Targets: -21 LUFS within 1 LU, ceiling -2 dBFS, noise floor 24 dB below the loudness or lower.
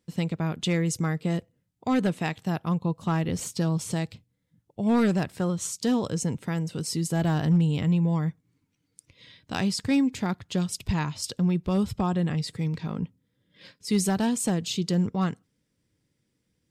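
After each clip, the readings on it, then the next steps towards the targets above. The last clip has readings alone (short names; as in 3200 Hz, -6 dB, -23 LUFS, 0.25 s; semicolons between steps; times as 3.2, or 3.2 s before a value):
clipped 0.3%; flat tops at -15.5 dBFS; loudness -27.0 LUFS; peak -15.5 dBFS; loudness target -21.0 LUFS
-> clip repair -15.5 dBFS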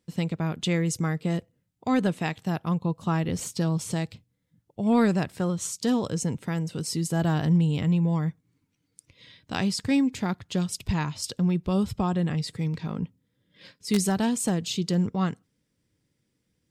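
clipped 0.0%; loudness -27.0 LUFS; peak -6.5 dBFS; loudness target -21.0 LUFS
-> gain +6 dB; limiter -2 dBFS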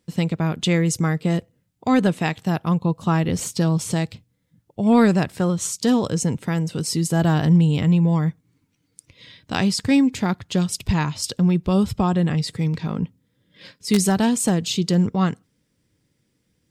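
loudness -21.0 LUFS; peak -2.0 dBFS; noise floor -70 dBFS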